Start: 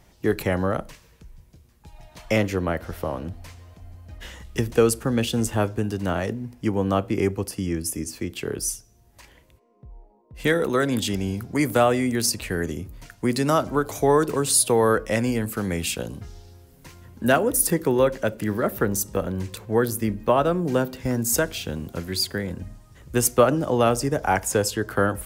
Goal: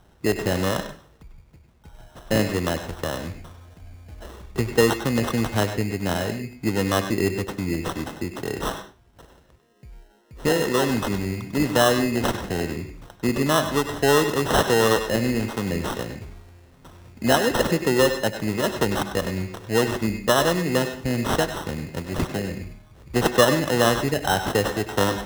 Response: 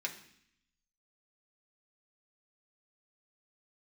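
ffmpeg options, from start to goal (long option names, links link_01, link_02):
-filter_complex "[0:a]acrusher=samples=19:mix=1:aa=0.000001,asplit=2[link_01][link_02];[1:a]atrim=start_sample=2205,afade=type=out:start_time=0.17:duration=0.01,atrim=end_sample=7938,adelay=97[link_03];[link_02][link_03]afir=irnorm=-1:irlink=0,volume=-9dB[link_04];[link_01][link_04]amix=inputs=2:normalize=0"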